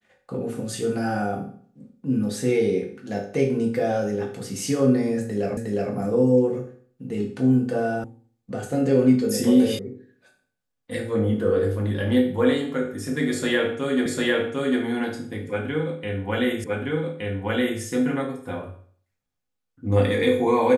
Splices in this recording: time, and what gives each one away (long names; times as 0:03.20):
0:05.57: the same again, the last 0.36 s
0:08.04: cut off before it has died away
0:09.79: cut off before it has died away
0:14.06: the same again, the last 0.75 s
0:16.64: the same again, the last 1.17 s